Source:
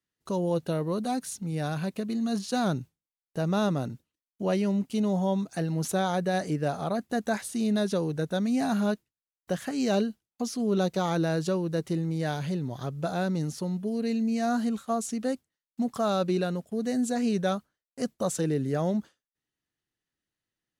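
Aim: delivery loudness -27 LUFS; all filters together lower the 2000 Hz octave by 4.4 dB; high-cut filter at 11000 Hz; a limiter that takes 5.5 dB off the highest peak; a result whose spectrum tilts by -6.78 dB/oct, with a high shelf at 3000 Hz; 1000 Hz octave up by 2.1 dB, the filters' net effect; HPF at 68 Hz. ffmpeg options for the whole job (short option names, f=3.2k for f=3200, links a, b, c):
-af "highpass=68,lowpass=11k,equalizer=f=1k:t=o:g=5.5,equalizer=f=2k:t=o:g=-7,highshelf=f=3k:g=-8,volume=3.5dB,alimiter=limit=-17dB:level=0:latency=1"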